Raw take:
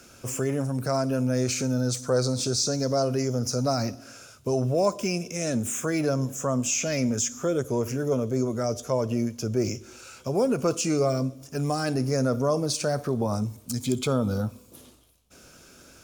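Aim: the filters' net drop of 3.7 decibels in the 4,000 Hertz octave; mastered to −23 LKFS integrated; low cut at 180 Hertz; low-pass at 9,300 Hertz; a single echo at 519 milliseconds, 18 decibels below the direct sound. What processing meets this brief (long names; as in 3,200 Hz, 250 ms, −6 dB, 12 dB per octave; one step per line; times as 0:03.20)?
high-pass filter 180 Hz
low-pass filter 9,300 Hz
parametric band 4,000 Hz −5 dB
single-tap delay 519 ms −18 dB
level +5 dB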